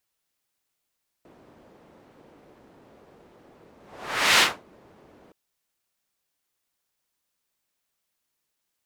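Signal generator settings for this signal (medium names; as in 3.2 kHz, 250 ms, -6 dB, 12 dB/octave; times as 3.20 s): whoosh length 4.07 s, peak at 3.15 s, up 0.66 s, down 0.24 s, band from 420 Hz, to 2.7 kHz, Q 0.86, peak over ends 36.5 dB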